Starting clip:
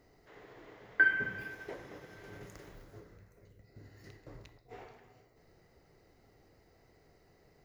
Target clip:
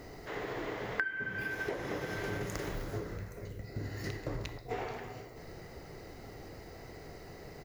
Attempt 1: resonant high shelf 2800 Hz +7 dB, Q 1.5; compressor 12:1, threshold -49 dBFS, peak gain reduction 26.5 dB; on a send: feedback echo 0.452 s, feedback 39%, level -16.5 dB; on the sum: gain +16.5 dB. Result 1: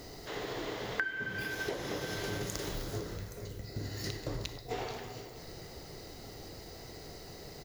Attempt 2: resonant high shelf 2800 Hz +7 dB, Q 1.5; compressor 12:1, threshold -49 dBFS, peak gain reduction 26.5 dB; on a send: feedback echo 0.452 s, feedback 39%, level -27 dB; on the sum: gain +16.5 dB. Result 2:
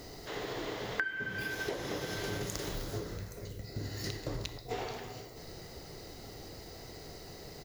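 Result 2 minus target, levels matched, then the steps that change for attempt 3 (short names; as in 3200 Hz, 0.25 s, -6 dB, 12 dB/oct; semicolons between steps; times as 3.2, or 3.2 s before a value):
4000 Hz band +7.0 dB
remove: resonant high shelf 2800 Hz +7 dB, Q 1.5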